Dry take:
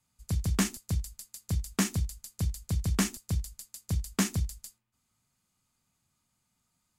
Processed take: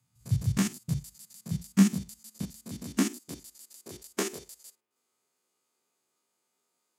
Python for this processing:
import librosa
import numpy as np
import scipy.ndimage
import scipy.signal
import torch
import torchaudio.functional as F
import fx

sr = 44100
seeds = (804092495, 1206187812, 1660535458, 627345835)

y = fx.spec_steps(x, sr, hold_ms=50)
y = fx.filter_sweep_highpass(y, sr, from_hz=120.0, to_hz=410.0, start_s=0.44, end_s=4.33, q=4.3)